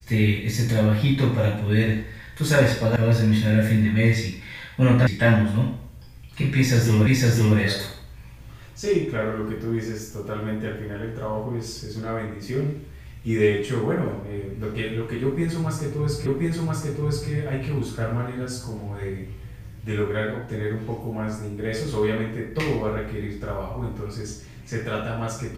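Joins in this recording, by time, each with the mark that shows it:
2.96 sound cut off
5.07 sound cut off
7.07 repeat of the last 0.51 s
16.26 repeat of the last 1.03 s

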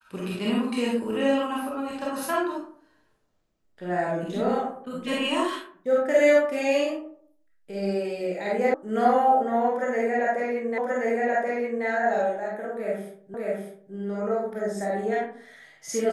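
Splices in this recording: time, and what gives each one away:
8.74 sound cut off
10.78 repeat of the last 1.08 s
13.34 repeat of the last 0.6 s

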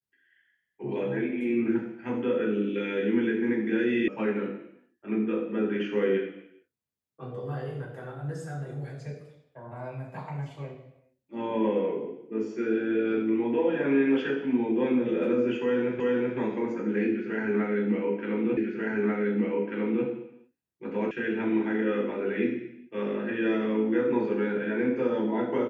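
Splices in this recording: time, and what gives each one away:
4.08 sound cut off
16 repeat of the last 0.38 s
18.57 repeat of the last 1.49 s
21.11 sound cut off

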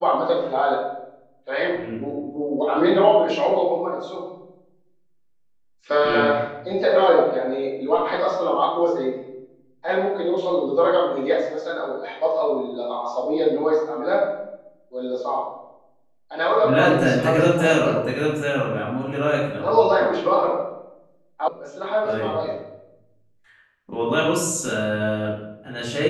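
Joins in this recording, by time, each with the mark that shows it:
21.48 sound cut off

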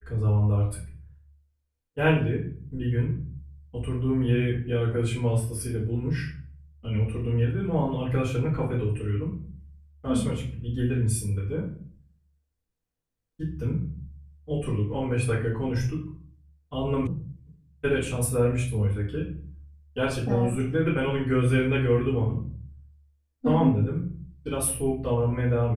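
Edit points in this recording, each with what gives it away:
17.07 sound cut off

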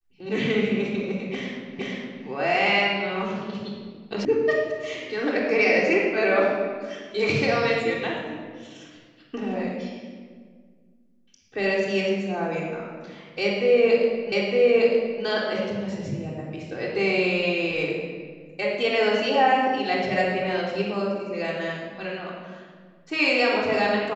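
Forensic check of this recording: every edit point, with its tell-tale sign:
1.79 repeat of the last 0.47 s
4.25 sound cut off
14.32 repeat of the last 0.91 s

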